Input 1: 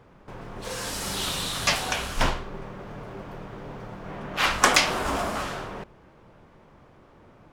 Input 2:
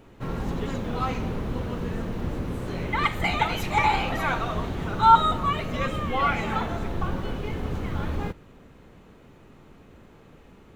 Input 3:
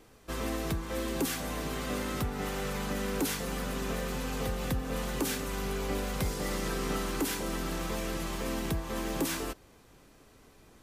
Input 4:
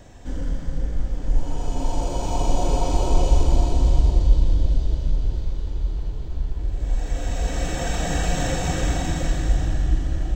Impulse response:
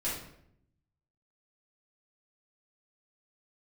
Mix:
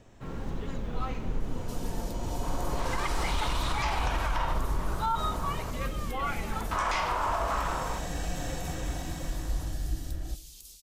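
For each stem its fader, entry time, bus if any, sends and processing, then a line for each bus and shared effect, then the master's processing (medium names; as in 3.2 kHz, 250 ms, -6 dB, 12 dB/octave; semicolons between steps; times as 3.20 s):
-6.0 dB, 2.15 s, muted 5.71–6.71 s, bus A, send -10 dB, ten-band graphic EQ 250 Hz -10 dB, 1 kHz +12 dB, 16 kHz -11 dB
6.86 s -8.5 dB -> 7.18 s -20 dB, 0.00 s, no bus, no send, none
+1.5 dB, 1.40 s, bus A, send -9 dB, inverse Chebyshev high-pass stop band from 900 Hz, stop band 70 dB; compression 16:1, threshold -51 dBFS, peak gain reduction 18.5 dB
-12.0 dB, 0.00 s, no bus, send -20.5 dB, none
bus A: 0.0 dB, compression, threshold -30 dBFS, peak gain reduction 17.5 dB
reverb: on, RT60 0.70 s, pre-delay 3 ms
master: peak limiter -19.5 dBFS, peak gain reduction 8 dB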